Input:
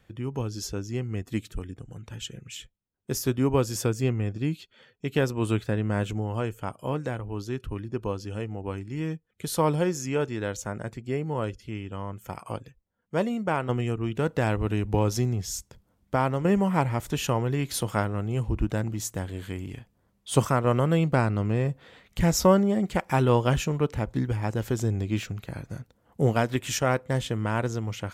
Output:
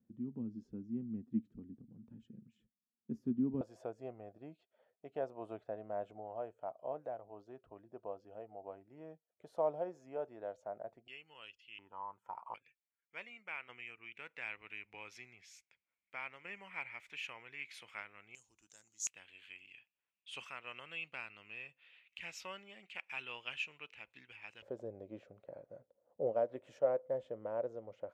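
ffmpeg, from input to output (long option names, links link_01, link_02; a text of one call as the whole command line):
ffmpeg -i in.wav -af "asetnsamples=nb_out_samples=441:pad=0,asendcmd='3.61 bandpass f 660;11.08 bandpass f 2800;11.79 bandpass f 930;12.54 bandpass f 2300;18.35 bandpass f 6600;19.07 bandpass f 2600;24.62 bandpass f 560',bandpass=frequency=230:width_type=q:width=7.5:csg=0" out.wav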